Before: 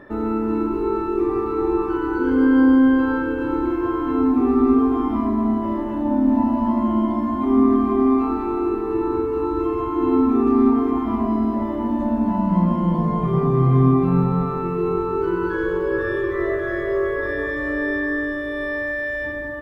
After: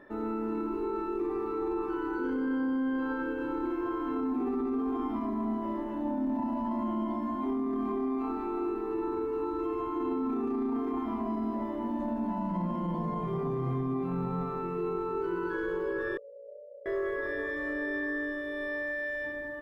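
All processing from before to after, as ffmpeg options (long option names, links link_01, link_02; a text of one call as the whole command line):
ffmpeg -i in.wav -filter_complex "[0:a]asettb=1/sr,asplit=3[link_01][link_02][link_03];[link_01]atrim=end=16.174[link_04];[link_02]atrim=start=16.17:end=16.86,asetpts=PTS-STARTPTS,afade=type=in:duration=0.004:curve=qsin,afade=type=out:start_time=0.686:duration=0.004:curve=qsin,asuperpass=centerf=530:order=12:qfactor=3.5,aecho=1:1:0.8:0.39,atrim=end_sample=30429[link_05];[link_03]atrim=start=16.856[link_06];[link_04][link_05]acrossfade=duration=0.004:curve1=hsin:curve2=qsin[link_07];[link_07][link_06]acrossfade=duration=0.004:curve1=qsin:curve2=hsin,equalizer=frequency=74:width_type=o:width=1.7:gain=-12,bandreject=frequency=1200:width=25,alimiter=limit=-16dB:level=0:latency=1:release=16,volume=-8.5dB" out.wav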